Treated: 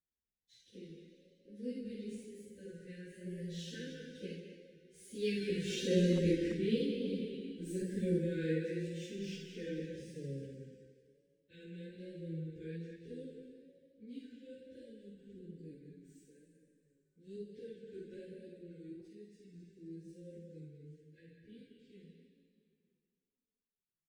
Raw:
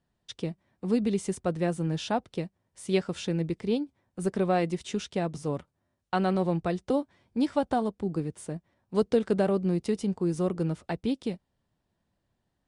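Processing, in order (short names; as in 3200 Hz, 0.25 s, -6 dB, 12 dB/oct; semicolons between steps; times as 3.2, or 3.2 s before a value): median filter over 3 samples; Doppler pass-by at 3.35, 22 m/s, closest 9.3 m; brick-wall FIR band-stop 550–1500 Hz; de-hum 62.23 Hz, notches 7; reverb RT60 1.2 s, pre-delay 33 ms, DRR 3.5 dB; random-step tremolo 3.5 Hz, depth 55%; chorus voices 4, 0.28 Hz, delay 28 ms, depth 3.7 ms; wow and flutter 60 cents; plain phase-vocoder stretch 1.9×; speakerphone echo 0.2 s, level -8 dB; gain +6 dB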